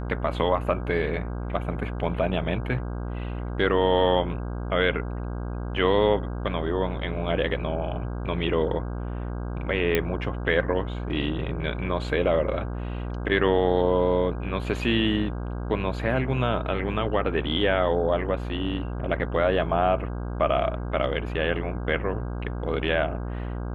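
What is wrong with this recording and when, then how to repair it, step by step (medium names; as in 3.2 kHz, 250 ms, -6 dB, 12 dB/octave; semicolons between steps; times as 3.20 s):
buzz 60 Hz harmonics 27 -31 dBFS
9.95 s: pop -9 dBFS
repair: de-click; de-hum 60 Hz, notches 27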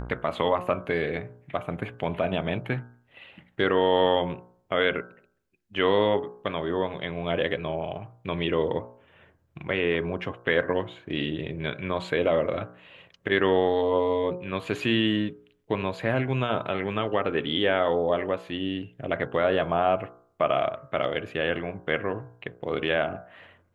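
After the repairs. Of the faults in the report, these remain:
nothing left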